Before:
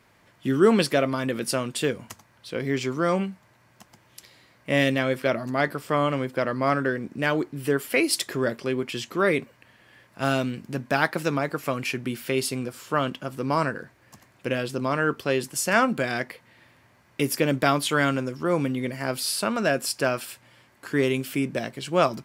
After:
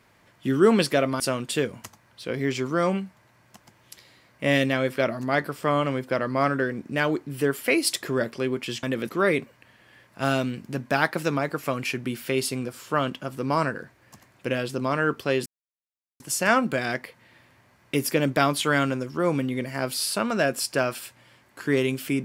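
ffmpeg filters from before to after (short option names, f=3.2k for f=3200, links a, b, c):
-filter_complex "[0:a]asplit=5[a][b][c][d][e];[a]atrim=end=1.202[f];[b]atrim=start=1.458:end=9.092[g];[c]atrim=start=1.198:end=1.462[h];[d]atrim=start=9.088:end=15.46,asetpts=PTS-STARTPTS,afade=t=out:st=6.368:d=0.004:c=hsin,apad=pad_dur=0.74[i];[e]atrim=start=15.46,asetpts=PTS-STARTPTS,afade=t=in:d=0.004:c=hsin[j];[f][g]acrossfade=d=0.004:c1=hsin:c2=hsin[k];[k][h]acrossfade=d=0.004:c1=hsin:c2=hsin[l];[i][j]concat=n=2:v=0:a=1[m];[l][m]acrossfade=d=0.004:c1=hsin:c2=hsin"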